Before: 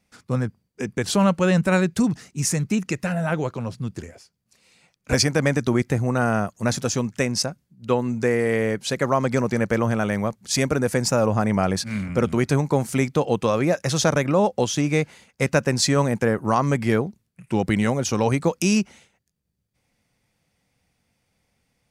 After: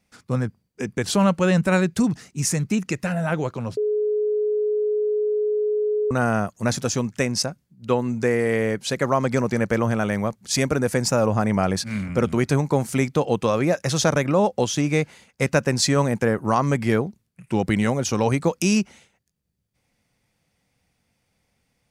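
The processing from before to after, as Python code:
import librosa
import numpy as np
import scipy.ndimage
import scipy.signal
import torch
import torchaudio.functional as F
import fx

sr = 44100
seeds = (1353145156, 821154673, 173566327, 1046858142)

y = fx.edit(x, sr, fx.bleep(start_s=3.77, length_s=2.34, hz=422.0, db=-19.0), tone=tone)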